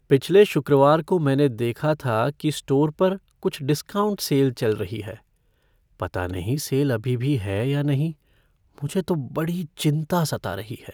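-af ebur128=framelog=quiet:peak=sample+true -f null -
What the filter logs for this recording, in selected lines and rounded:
Integrated loudness:
  I:         -22.7 LUFS
  Threshold: -33.3 LUFS
Loudness range:
  LRA:         5.0 LU
  Threshold: -44.3 LUFS
  LRA low:   -26.1 LUFS
  LRA high:  -21.1 LUFS
Sample peak:
  Peak:       -4.4 dBFS
True peak:
  Peak:       -4.4 dBFS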